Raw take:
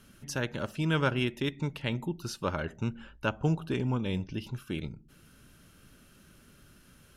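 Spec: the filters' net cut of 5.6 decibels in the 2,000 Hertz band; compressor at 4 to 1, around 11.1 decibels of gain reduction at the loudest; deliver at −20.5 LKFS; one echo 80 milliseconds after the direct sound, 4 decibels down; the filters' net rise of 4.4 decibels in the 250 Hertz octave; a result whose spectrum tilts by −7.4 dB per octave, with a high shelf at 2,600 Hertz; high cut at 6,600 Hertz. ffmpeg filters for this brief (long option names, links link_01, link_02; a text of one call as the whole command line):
ffmpeg -i in.wav -af "lowpass=6600,equalizer=frequency=250:width_type=o:gain=6,equalizer=frequency=2000:width_type=o:gain=-4.5,highshelf=frequency=2600:gain=-8,acompressor=threshold=-34dB:ratio=4,aecho=1:1:80:0.631,volume=17dB" out.wav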